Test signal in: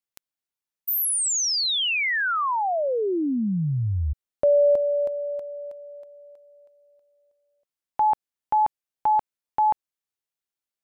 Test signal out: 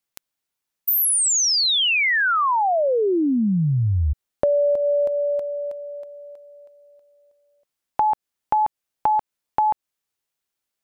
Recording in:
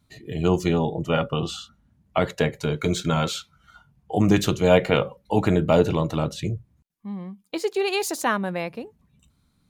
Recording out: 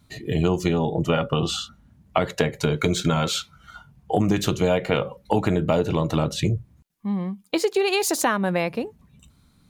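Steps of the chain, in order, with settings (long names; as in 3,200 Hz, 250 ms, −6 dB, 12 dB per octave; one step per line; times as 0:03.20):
downward compressor 6 to 1, threshold −25 dBFS
level +7.5 dB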